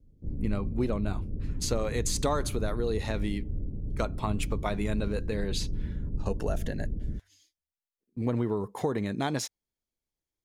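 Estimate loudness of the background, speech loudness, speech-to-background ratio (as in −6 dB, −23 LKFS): −36.5 LKFS, −32.5 LKFS, 4.0 dB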